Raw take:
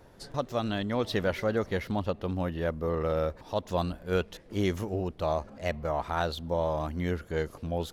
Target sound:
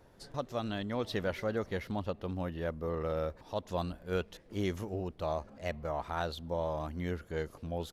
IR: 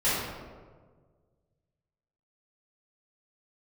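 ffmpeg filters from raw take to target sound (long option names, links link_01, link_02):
-af "aresample=32000,aresample=44100,volume=-5.5dB"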